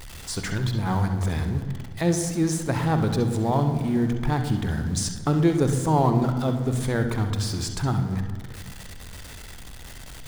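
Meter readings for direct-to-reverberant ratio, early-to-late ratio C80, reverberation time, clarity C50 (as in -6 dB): 6.0 dB, 9.5 dB, 1.7 s, 6.5 dB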